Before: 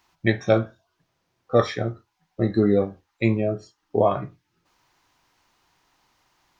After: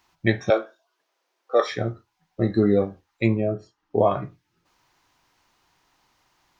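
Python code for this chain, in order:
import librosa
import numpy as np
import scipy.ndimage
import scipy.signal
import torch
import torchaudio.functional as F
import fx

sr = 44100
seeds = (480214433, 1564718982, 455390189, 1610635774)

y = fx.highpass(x, sr, hz=380.0, slope=24, at=(0.5, 1.72))
y = fx.high_shelf(y, sr, hz=fx.line((3.26, 3100.0), (3.97, 4200.0)), db=-11.5, at=(3.26, 3.97), fade=0.02)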